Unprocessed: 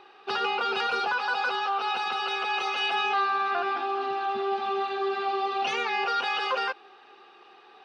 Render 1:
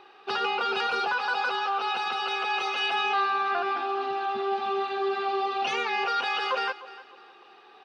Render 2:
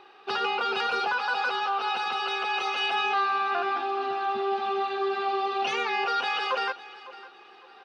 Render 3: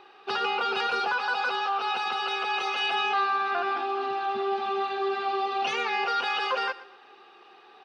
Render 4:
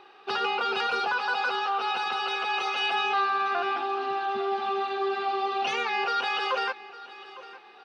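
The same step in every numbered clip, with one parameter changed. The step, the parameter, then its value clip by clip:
feedback delay, time: 302 ms, 555 ms, 120 ms, 856 ms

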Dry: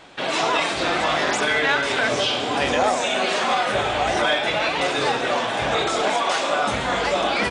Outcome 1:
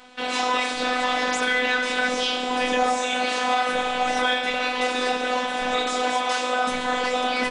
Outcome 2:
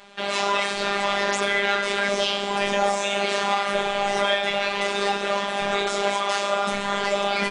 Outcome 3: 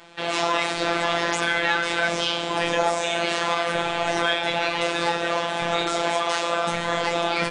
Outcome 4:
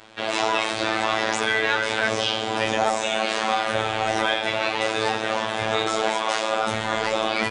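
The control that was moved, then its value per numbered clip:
robot voice, frequency: 250 Hz, 200 Hz, 170 Hz, 110 Hz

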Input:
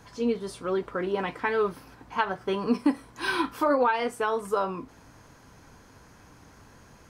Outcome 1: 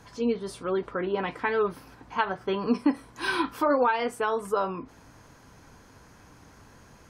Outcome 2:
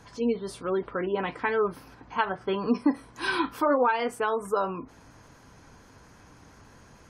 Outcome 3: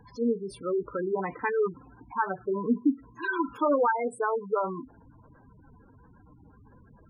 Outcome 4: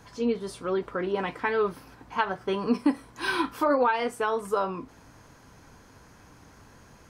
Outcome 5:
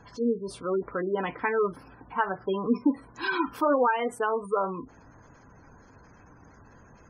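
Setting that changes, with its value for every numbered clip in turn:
spectral gate, under each frame's peak: -45 dB, -35 dB, -10 dB, -60 dB, -20 dB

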